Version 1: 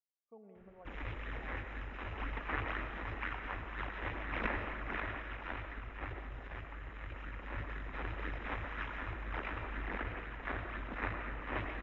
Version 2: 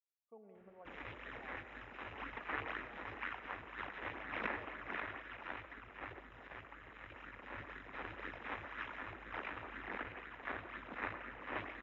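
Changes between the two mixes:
background: send -9.5 dB; master: add high-pass 270 Hz 6 dB/octave

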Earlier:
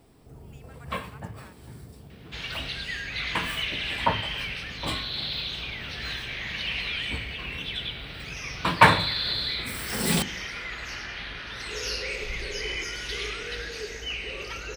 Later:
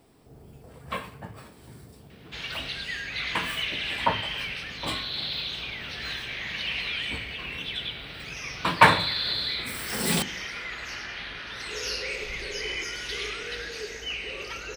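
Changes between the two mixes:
speech -10.5 dB; master: add bass shelf 120 Hz -7.5 dB

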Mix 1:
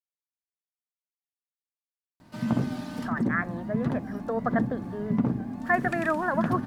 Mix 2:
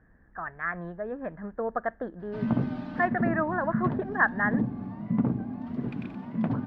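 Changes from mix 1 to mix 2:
speech: entry -2.70 s; master: add distance through air 340 m

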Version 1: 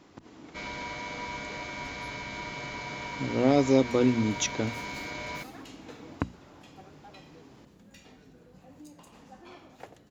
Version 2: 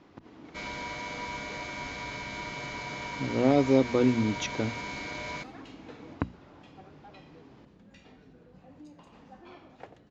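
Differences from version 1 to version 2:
first sound: remove distance through air 160 m; master: add distance through air 150 m

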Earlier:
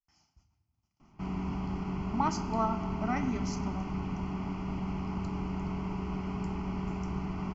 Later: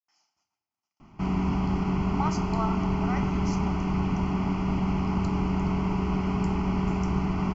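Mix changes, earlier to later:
speech: add high-pass 520 Hz 12 dB/octave; background +8.5 dB

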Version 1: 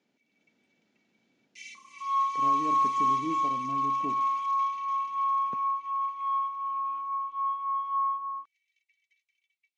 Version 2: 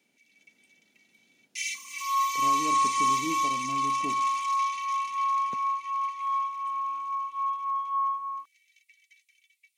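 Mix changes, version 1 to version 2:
first sound +10.5 dB; master: remove distance through air 99 m

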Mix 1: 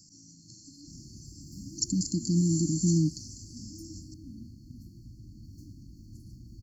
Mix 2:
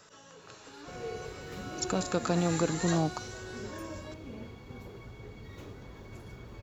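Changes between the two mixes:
speech -5.5 dB; master: remove brick-wall FIR band-stop 340–4200 Hz

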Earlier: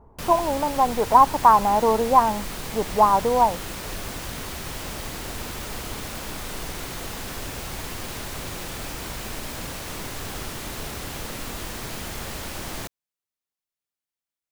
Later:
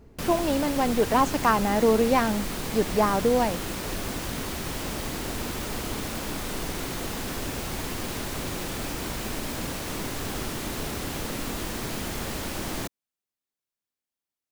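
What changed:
speech: remove resonant low-pass 960 Hz, resonance Q 4.4; master: add peaking EQ 270 Hz +5.5 dB 1.5 oct

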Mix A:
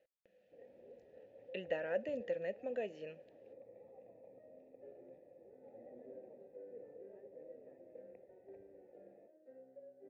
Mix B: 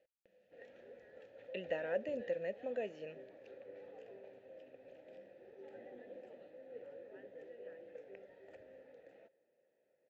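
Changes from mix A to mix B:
first sound: remove boxcar filter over 29 samples; second sound: entry -2.90 s

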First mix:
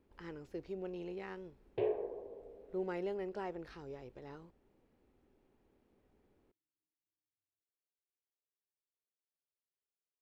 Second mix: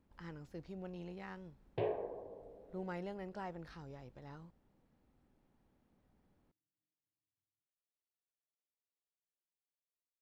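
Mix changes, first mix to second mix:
background +4.5 dB; master: add fifteen-band graphic EQ 160 Hz +5 dB, 400 Hz -10 dB, 2.5 kHz -4 dB

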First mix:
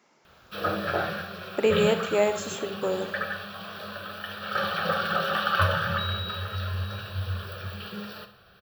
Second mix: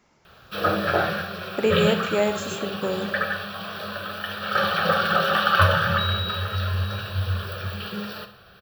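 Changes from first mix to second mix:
speech: remove high-pass 240 Hz 12 dB/octave; background +5.5 dB

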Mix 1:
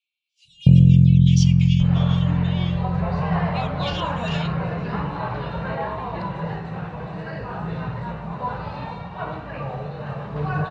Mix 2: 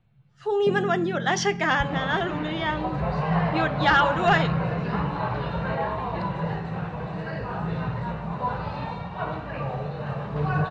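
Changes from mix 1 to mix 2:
speech: remove Chebyshev high-pass 2.3 kHz, order 8; first sound: add high-pass 270 Hz 24 dB/octave

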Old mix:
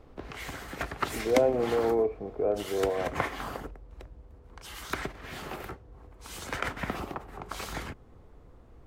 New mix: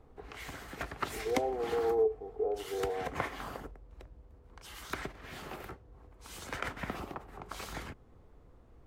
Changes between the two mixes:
speech: add two resonant band-passes 580 Hz, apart 0.81 oct; background -5.0 dB

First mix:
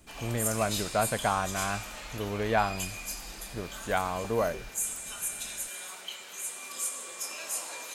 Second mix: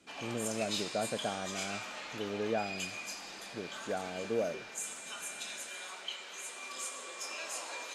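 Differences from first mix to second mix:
speech: add boxcar filter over 42 samples; master: add band-pass 230–5500 Hz

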